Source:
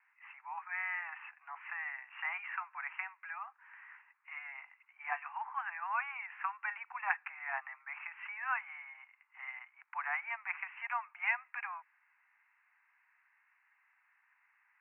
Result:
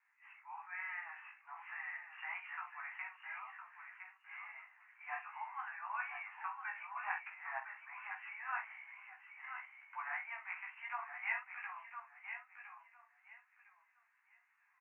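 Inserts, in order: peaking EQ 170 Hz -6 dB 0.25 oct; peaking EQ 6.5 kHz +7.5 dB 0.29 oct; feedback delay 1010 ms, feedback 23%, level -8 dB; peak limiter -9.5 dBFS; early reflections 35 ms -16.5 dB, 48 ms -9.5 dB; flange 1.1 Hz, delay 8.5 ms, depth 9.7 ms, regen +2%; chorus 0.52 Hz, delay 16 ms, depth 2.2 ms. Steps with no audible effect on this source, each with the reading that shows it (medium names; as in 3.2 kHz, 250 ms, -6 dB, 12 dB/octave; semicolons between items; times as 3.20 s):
peaking EQ 170 Hz: input has nothing below 600 Hz; peaking EQ 6.5 kHz: input has nothing above 3 kHz; peak limiter -9.5 dBFS: peak at its input -17.0 dBFS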